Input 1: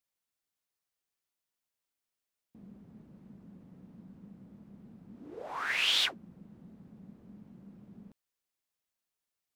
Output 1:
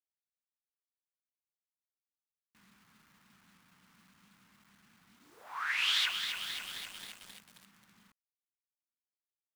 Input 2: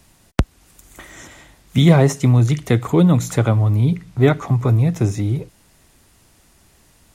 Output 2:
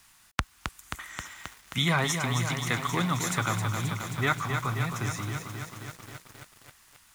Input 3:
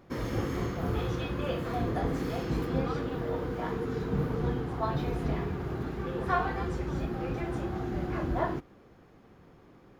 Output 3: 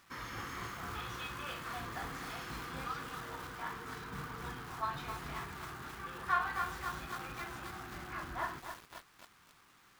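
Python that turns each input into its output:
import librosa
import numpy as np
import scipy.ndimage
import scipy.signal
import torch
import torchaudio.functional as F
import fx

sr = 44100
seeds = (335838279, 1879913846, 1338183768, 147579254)

y = fx.quant_dither(x, sr, seeds[0], bits=10, dither='none')
y = fx.low_shelf_res(y, sr, hz=780.0, db=-13.0, q=1.5)
y = fx.echo_crushed(y, sr, ms=266, feedback_pct=80, bits=7, wet_db=-6.0)
y = y * 10.0 ** (-3.0 / 20.0)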